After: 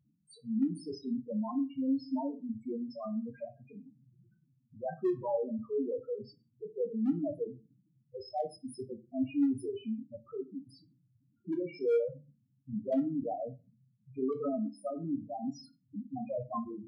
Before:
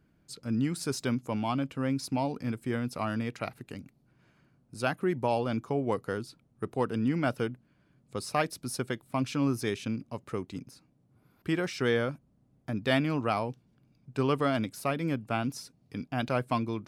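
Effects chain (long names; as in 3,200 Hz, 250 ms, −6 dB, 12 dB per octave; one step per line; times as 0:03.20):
low-shelf EQ 170 Hz −5.5 dB
spectral peaks only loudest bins 2
reversed playback
upward compression, threshold −53 dBFS
reversed playback
hard clipping −26.5 dBFS, distortion −31 dB
on a send: parametric band 2,100 Hz +3.5 dB 2.9 octaves + convolution reverb RT60 0.30 s, pre-delay 3 ms, DRR 5.5 dB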